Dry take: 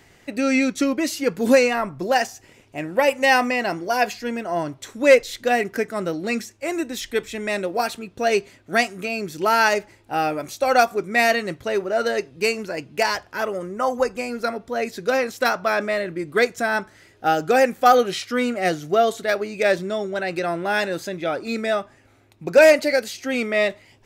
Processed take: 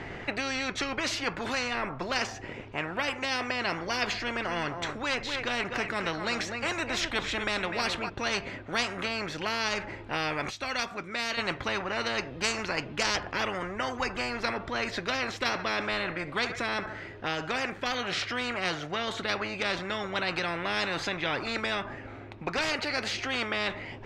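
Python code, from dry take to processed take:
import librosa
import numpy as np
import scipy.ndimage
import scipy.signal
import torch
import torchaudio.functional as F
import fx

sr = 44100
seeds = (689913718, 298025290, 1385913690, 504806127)

y = fx.echo_single(x, sr, ms=250, db=-16.0, at=(4.42, 8.08), fade=0.02)
y = fx.tone_stack(y, sr, knobs='5-5-5', at=(10.49, 11.37), fade=0.02)
y = fx.dynamic_eq(y, sr, hz=6400.0, q=0.88, threshold_db=-40.0, ratio=4.0, max_db=7, at=(12.32, 13.16))
y = fx.echo_thinned(y, sr, ms=71, feedback_pct=38, hz=420.0, wet_db=-20.0, at=(15.47, 17.69), fade=0.02)
y = scipy.signal.sosfilt(scipy.signal.butter(2, 2300.0, 'lowpass', fs=sr, output='sos'), y)
y = fx.rider(y, sr, range_db=4, speed_s=0.5)
y = fx.spectral_comp(y, sr, ratio=4.0)
y = y * 10.0 ** (-7.0 / 20.0)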